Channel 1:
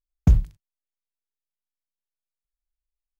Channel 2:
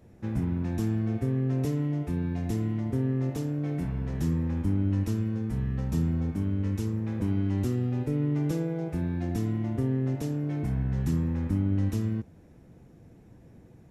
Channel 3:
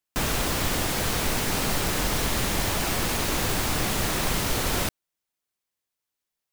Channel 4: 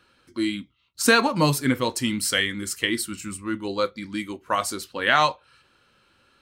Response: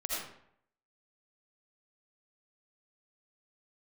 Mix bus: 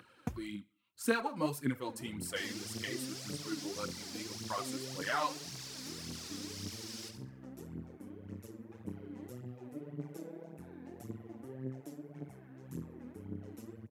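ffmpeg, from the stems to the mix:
-filter_complex "[0:a]acompressor=threshold=-21dB:ratio=12,equalizer=f=240:t=o:w=3:g=-12,volume=-1dB[a];[1:a]bass=f=250:g=-6,treble=f=4k:g=6,tremolo=f=130:d=0.947,adelay=1650,volume=-11.5dB[b];[2:a]flanger=delay=16.5:depth=6.5:speed=0.85,bandpass=f=5.1k:t=q:w=3.6:csg=0,adelay=2200,volume=-2.5dB,asplit=2[c][d];[d]volume=-9dB[e];[3:a]acompressor=mode=upward:threshold=-34dB:ratio=2.5,volume=-16dB,asplit=2[f][g];[g]volume=-22.5dB[h];[e][h]amix=inputs=2:normalize=0,aecho=0:1:69|138|207|276|345:1|0.36|0.13|0.0467|0.0168[i];[a][b][c][f][i]amix=inputs=5:normalize=0,highpass=f=100:w=0.5412,highpass=f=100:w=1.3066,equalizer=f=4.5k:t=o:w=1.7:g=-7,aphaser=in_gain=1:out_gain=1:delay=4.2:decay=0.61:speed=1.8:type=triangular"

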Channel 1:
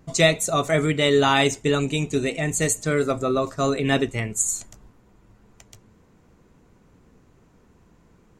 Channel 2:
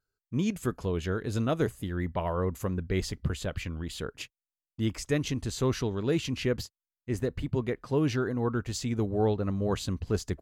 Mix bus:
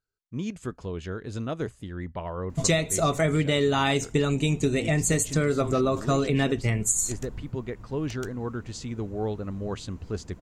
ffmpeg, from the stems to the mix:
-filter_complex "[0:a]lowshelf=f=200:g=7.5,adelay=2500,volume=3dB[a];[1:a]lowpass=f=9k:w=0.5412,lowpass=f=9k:w=1.3066,volume=-3.5dB[b];[a][b]amix=inputs=2:normalize=0,acompressor=threshold=-20dB:ratio=6"

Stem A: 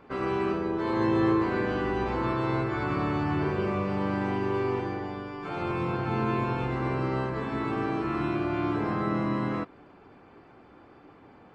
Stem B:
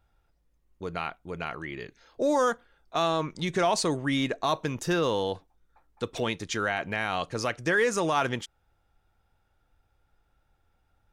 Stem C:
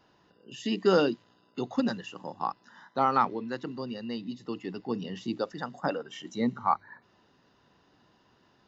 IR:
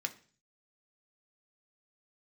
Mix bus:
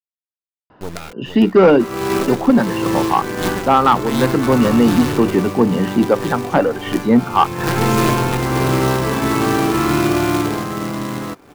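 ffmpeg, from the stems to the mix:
-filter_complex "[0:a]acompressor=mode=upward:threshold=-31dB:ratio=2.5,acrusher=bits=2:mode=log:mix=0:aa=0.000001,adelay=1700,volume=-0.5dB,afade=t=out:st=10.18:d=0.5:silence=0.334965[a];[1:a]acrossover=split=360[b][c];[c]acompressor=threshold=-41dB:ratio=3[d];[b][d]amix=inputs=2:normalize=0,acrusher=bits=5:dc=4:mix=0:aa=0.000001,volume=-2dB[e];[2:a]lowpass=1.7k,dynaudnorm=f=100:g=11:m=15dB,asoftclip=type=hard:threshold=-6dB,adelay=700,volume=2.5dB[f];[a][e][f]amix=inputs=3:normalize=0,dynaudnorm=f=120:g=3:m=14dB,asoftclip=type=tanh:threshold=-3dB"

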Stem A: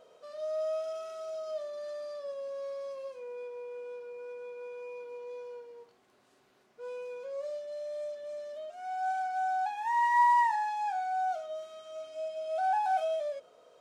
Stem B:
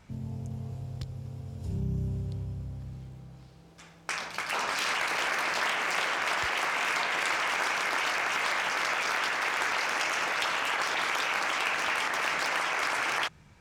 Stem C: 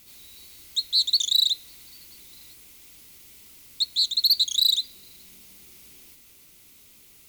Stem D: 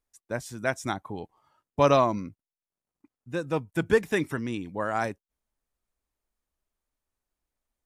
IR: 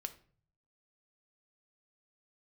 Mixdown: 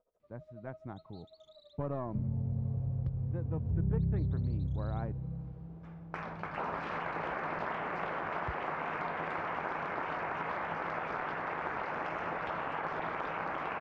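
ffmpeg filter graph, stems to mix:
-filter_complex "[0:a]aeval=exprs='val(0)*pow(10,-20*(0.5-0.5*cos(2*PI*12*n/s))/20)':c=same,volume=-15.5dB[a];[1:a]lowshelf=f=190:g=10,adelay=2050,volume=-1dB[b];[2:a]alimiter=limit=-19.5dB:level=0:latency=1:release=23,adelay=200,volume=-16.5dB[c];[3:a]lowshelf=f=170:g=11.5,dynaudnorm=f=800:g=3:m=11.5dB,aeval=exprs='(tanh(3.16*val(0)+0.55)-tanh(0.55))/3.16':c=same,volume=-15dB[d];[a][b][c][d]amix=inputs=4:normalize=0,lowpass=1.1k,equalizer=f=160:w=5.7:g=6.5,acompressor=threshold=-33dB:ratio=2"

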